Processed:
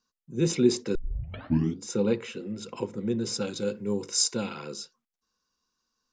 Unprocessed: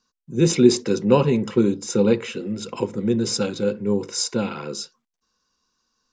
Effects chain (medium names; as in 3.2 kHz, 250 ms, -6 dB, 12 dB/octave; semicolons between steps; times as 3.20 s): 0.95 s: tape start 0.88 s; 3.47–4.74 s: treble shelf 4.4 kHz +12 dB; trim -7.5 dB